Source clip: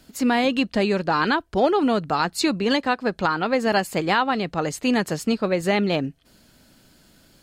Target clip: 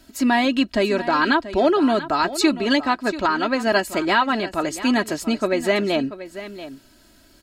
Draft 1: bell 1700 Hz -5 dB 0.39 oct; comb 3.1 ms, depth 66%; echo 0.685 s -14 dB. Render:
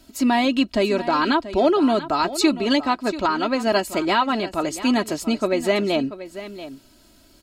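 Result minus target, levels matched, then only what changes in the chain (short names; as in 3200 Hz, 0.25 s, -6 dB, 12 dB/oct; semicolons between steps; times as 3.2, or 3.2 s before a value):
2000 Hz band -3.5 dB
change: bell 1700 Hz +2 dB 0.39 oct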